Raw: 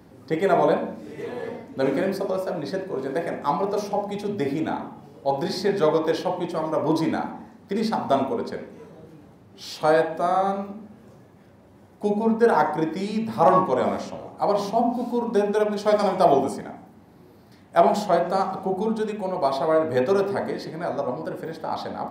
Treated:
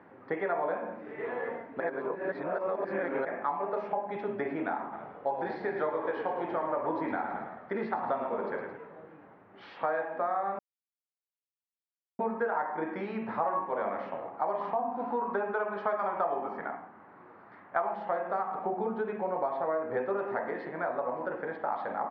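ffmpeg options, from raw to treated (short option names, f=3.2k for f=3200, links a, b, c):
-filter_complex "[0:a]asplit=3[a][b][c];[a]afade=t=out:st=4.92:d=0.02[d];[b]asplit=7[e][f][g][h][i][j][k];[f]adelay=109,afreqshift=-33,volume=-9dB[l];[g]adelay=218,afreqshift=-66,volume=-14.5dB[m];[h]adelay=327,afreqshift=-99,volume=-20dB[n];[i]adelay=436,afreqshift=-132,volume=-25.5dB[o];[j]adelay=545,afreqshift=-165,volume=-31.1dB[p];[k]adelay=654,afreqshift=-198,volume=-36.6dB[q];[e][l][m][n][o][p][q]amix=inputs=7:normalize=0,afade=t=in:st=4.92:d=0.02,afade=t=out:st=8.76:d=0.02[r];[c]afade=t=in:st=8.76:d=0.02[s];[d][r][s]amix=inputs=3:normalize=0,asettb=1/sr,asplit=3[t][u][v];[t]atrim=end=14.614[w];[u]atrim=start=14.61:end=17.94,asetpts=PTS-STARTPTS,afade=t=in:d=0.004:c=qsin,afade=t=out:st=3.326:d=0.004:c=qsin,equalizer=f=1.2k:w=1.7:g=7[x];[v]atrim=start=17.936[y];[w][x]acrossfade=d=0.004:c1=hsin:c2=qsin[z];[z][y]acrossfade=d=0.004:c1=qsin:c2=hsin,asettb=1/sr,asplit=3[aa][ab][ac];[aa]atrim=end=18.794[ad];[ab]atrim=start=18.79:end=20.19,asetpts=PTS-STARTPTS,afade=t=in:d=0.004:c=qsin,afade=t=out:st=1.396:d=0.004:c=qsin,tiltshelf=f=660:g=3[ae];[ac]atrim=start=20.186[af];[ad][ae]acrossfade=d=0.004:c1=hsin:c2=qsin[ag];[ag][af]acrossfade=d=0.004:c1=qsin:c2=hsin,asplit=5[ah][ai][aj][ak][al];[ah]atrim=end=1.802[am];[ai]atrim=start=1.798:end=3.252,asetpts=PTS-STARTPTS,areverse[an];[aj]atrim=start=3.248:end=10.59,asetpts=PTS-STARTPTS,afade=t=out:st=7.338:d=0.004:c=hsin[ao];[ak]atrim=start=10.59:end=12.19,asetpts=PTS-STARTPTS,volume=0[ap];[al]atrim=start=12.19,asetpts=PTS-STARTPTS,afade=t=in:d=0.004:c=hsin[aq];[am][an]acrossfade=d=0.004:c1=hsin:c2=hsin[ar];[ao][ap][aq]concat=n=3:v=0:a=1[as];[ar][as]acrossfade=d=0.004:c1=hsin:c2=hsin,highpass=f=1.4k:p=1,acompressor=threshold=-35dB:ratio=6,lowpass=f=1.9k:w=0.5412,lowpass=f=1.9k:w=1.3066,volume=7dB"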